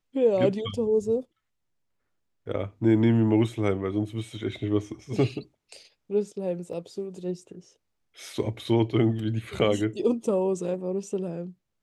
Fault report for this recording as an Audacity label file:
6.730000	6.730000	drop-out 3.1 ms

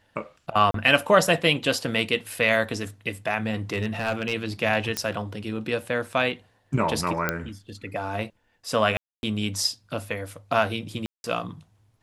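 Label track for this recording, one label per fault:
0.710000	0.740000	drop-out 33 ms
3.730000	4.330000	clipping −17.5 dBFS
4.970000	4.970000	click −9 dBFS
7.290000	7.290000	click −9 dBFS
8.970000	9.230000	drop-out 261 ms
11.060000	11.240000	drop-out 181 ms

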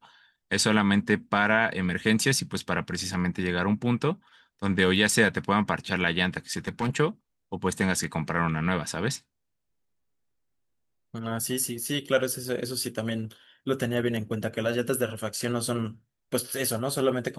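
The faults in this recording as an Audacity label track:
6.510000	6.970000	clipping −22 dBFS

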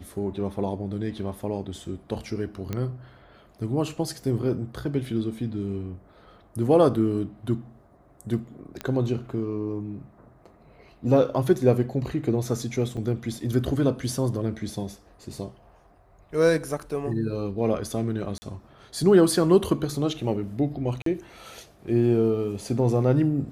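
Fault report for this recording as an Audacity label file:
2.730000	2.730000	click −16 dBFS
8.810000	8.810000	click −16 dBFS
12.970000	12.970000	drop-out 2.7 ms
18.380000	18.420000	drop-out 40 ms
21.020000	21.060000	drop-out 43 ms

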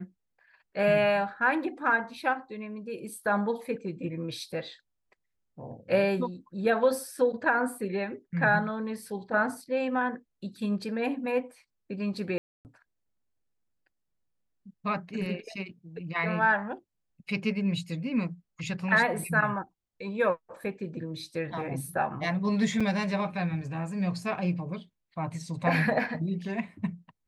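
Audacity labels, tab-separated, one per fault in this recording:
12.380000	12.650000	drop-out 269 ms
22.800000	22.810000	drop-out 5.4 ms

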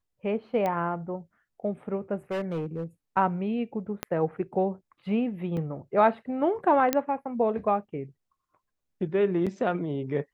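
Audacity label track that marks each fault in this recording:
0.660000	0.660000	click −17 dBFS
2.310000	2.840000	clipping −26.5 dBFS
4.030000	4.030000	click −13 dBFS
5.570000	5.570000	drop-out 3.2 ms
6.930000	6.930000	click −8 dBFS
9.460000	9.470000	drop-out 6.4 ms

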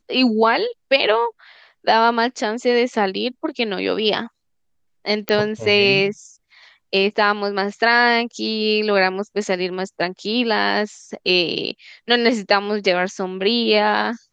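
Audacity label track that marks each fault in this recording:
5.290000	5.290000	click −6 dBFS

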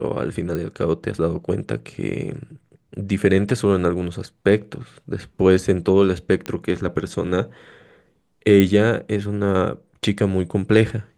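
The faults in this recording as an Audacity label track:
0.550000	0.550000	click −15 dBFS
6.460000	6.460000	click −13 dBFS
8.600000	8.600000	click −5 dBFS

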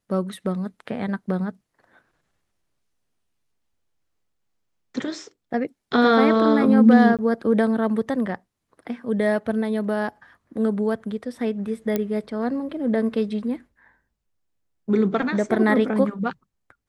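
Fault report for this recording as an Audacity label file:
7.170000	7.190000	drop-out 17 ms
11.960000	11.960000	click −10 dBFS

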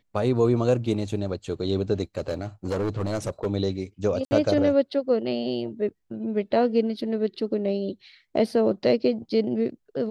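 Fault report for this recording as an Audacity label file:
2.180000	3.470000	clipping −22 dBFS
4.250000	4.310000	drop-out 60 ms

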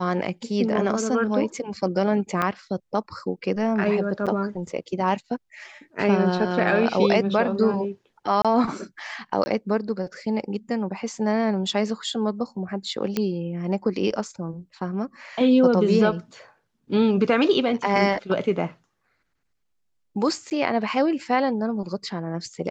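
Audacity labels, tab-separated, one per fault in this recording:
2.420000	2.420000	drop-out 2.6 ms
4.260000	4.270000	drop-out 7 ms
8.420000	8.450000	drop-out 26 ms
9.440000	9.460000	drop-out 20 ms
13.170000	13.170000	click −10 dBFS
20.500000	20.510000	drop-out 9.6 ms

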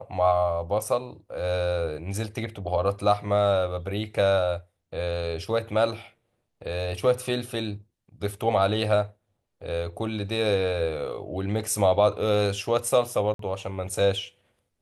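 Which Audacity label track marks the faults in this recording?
13.340000	13.390000	drop-out 53 ms

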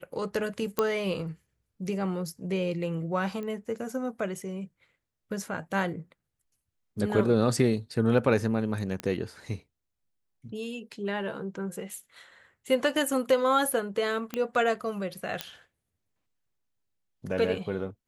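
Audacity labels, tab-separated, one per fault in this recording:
0.790000	0.790000	click −11 dBFS
3.430000	3.430000	click −26 dBFS
9.000000	9.000000	click −18 dBFS
14.340000	14.340000	click −17 dBFS
15.410000	15.410000	click −13 dBFS

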